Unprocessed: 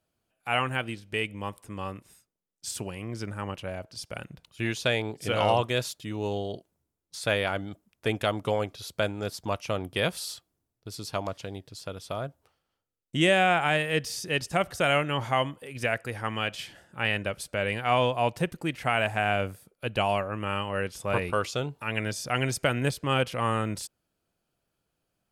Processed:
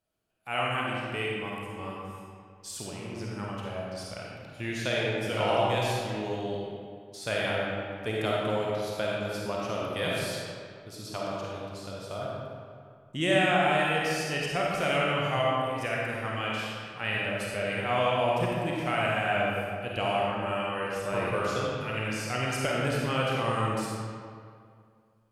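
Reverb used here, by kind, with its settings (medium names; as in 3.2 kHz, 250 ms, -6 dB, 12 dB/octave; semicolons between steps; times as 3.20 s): algorithmic reverb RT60 2.2 s, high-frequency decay 0.65×, pre-delay 10 ms, DRR -4.5 dB; trim -6.5 dB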